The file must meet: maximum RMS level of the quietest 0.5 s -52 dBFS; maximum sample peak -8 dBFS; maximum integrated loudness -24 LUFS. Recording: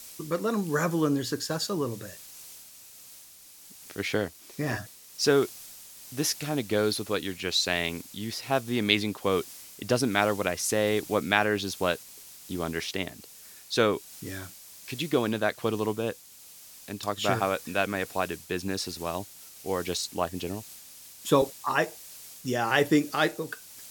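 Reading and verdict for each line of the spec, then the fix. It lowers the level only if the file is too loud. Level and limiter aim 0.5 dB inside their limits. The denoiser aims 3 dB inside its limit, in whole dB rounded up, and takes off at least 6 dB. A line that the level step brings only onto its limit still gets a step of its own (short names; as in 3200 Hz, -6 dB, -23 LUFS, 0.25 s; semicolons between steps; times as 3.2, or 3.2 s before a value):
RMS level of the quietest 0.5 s -51 dBFS: fail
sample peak -5.0 dBFS: fail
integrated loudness -28.5 LUFS: OK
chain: denoiser 6 dB, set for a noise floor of -51 dBFS; limiter -8.5 dBFS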